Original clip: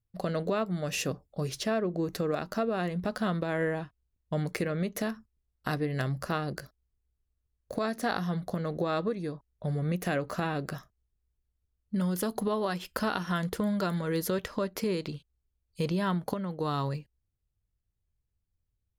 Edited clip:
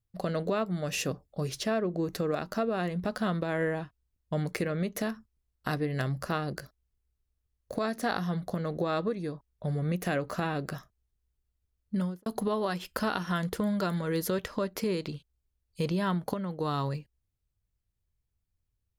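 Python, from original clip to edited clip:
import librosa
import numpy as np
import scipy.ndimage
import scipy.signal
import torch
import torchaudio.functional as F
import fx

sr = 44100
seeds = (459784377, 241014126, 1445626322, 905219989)

y = fx.studio_fade_out(x, sr, start_s=11.96, length_s=0.3)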